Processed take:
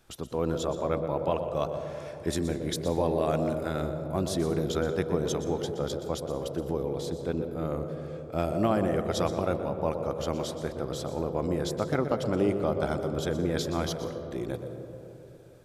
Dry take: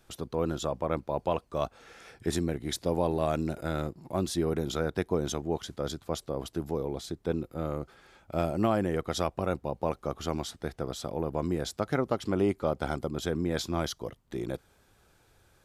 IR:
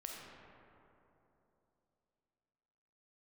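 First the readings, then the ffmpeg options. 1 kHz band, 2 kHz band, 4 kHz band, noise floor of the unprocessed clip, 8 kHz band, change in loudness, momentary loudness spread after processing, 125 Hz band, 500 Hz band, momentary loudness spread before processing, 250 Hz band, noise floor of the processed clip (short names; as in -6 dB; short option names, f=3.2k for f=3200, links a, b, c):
+1.0 dB, +0.5 dB, +0.5 dB, -65 dBFS, +0.5 dB, +2.0 dB, 8 LU, +2.0 dB, +2.5 dB, 8 LU, +1.5 dB, -46 dBFS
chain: -filter_complex "[0:a]asplit=2[a][b];[b]equalizer=f=125:t=o:w=1:g=11,equalizer=f=500:t=o:w=1:g=10,equalizer=f=8k:t=o:w=1:g=3[c];[1:a]atrim=start_sample=2205,adelay=122[d];[c][d]afir=irnorm=-1:irlink=0,volume=-8.5dB[e];[a][e]amix=inputs=2:normalize=0"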